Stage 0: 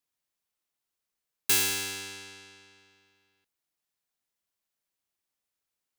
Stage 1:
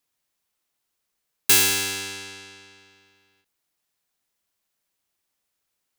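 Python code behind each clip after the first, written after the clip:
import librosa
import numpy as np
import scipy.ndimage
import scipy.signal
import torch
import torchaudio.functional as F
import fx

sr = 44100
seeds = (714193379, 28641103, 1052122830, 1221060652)

y = fx.end_taper(x, sr, db_per_s=180.0)
y = y * 10.0 ** (7.5 / 20.0)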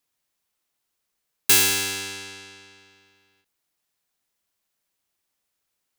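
y = x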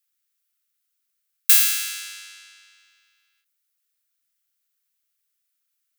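y = scipy.signal.sosfilt(scipy.signal.ellip(4, 1.0, 80, 1300.0, 'highpass', fs=sr, output='sos'), x)
y = fx.high_shelf(y, sr, hz=9700.0, db=11.0)
y = y * 10.0 ** (-4.0 / 20.0)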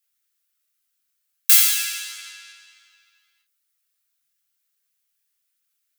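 y = fx.chorus_voices(x, sr, voices=4, hz=0.55, base_ms=23, depth_ms=1.7, mix_pct=50)
y = y * 10.0 ** (5.5 / 20.0)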